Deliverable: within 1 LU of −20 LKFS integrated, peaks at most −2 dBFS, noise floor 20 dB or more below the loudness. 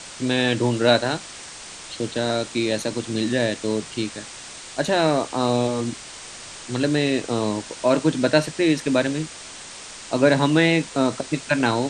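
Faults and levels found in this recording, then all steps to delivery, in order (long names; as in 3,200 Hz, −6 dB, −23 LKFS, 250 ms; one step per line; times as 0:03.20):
background noise floor −39 dBFS; target noise floor −42 dBFS; integrated loudness −22.0 LKFS; sample peak −2.0 dBFS; target loudness −20.0 LKFS
→ broadband denoise 6 dB, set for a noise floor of −39 dBFS
level +2 dB
brickwall limiter −2 dBFS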